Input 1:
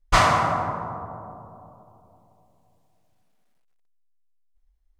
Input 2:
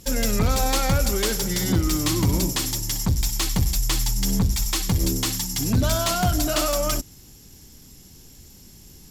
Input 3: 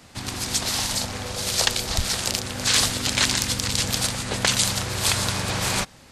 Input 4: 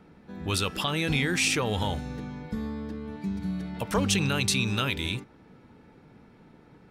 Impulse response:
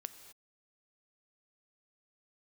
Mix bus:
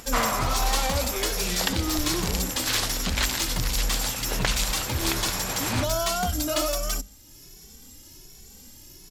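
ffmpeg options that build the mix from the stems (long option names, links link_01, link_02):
-filter_complex "[0:a]volume=-8dB[link_01];[1:a]asplit=2[link_02][link_03];[link_03]adelay=2.2,afreqshift=1.3[link_04];[link_02][link_04]amix=inputs=2:normalize=1,volume=-0.5dB,asplit=2[link_05][link_06];[link_06]volume=-17.5dB[link_07];[2:a]highshelf=frequency=4700:gain=-10.5,volume=-2.5dB[link_08];[3:a]highpass=1500,acrusher=bits=8:dc=4:mix=0:aa=0.000001,volume=-11dB[link_09];[4:a]atrim=start_sample=2205[link_10];[link_07][link_10]afir=irnorm=-1:irlink=0[link_11];[link_01][link_05][link_08][link_09][link_11]amix=inputs=5:normalize=0,equalizer=frequency=130:width=0.66:gain=-7,bandreject=frequency=50:width_type=h:width=6,bandreject=frequency=100:width_type=h:width=6,bandreject=frequency=150:width_type=h:width=6,bandreject=frequency=200:width_type=h:width=6,acompressor=mode=upward:threshold=-40dB:ratio=2.5"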